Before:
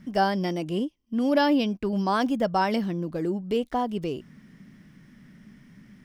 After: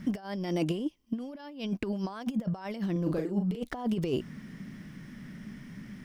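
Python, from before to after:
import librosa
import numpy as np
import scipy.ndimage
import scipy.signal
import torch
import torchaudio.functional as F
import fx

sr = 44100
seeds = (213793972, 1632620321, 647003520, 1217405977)

y = fx.low_shelf(x, sr, hz=190.0, db=-3.5, at=(0.57, 2.1))
y = fx.over_compress(y, sr, threshold_db=-31.0, ratio=-0.5)
y = fx.doubler(y, sr, ms=39.0, db=-5.0, at=(2.92, 3.64))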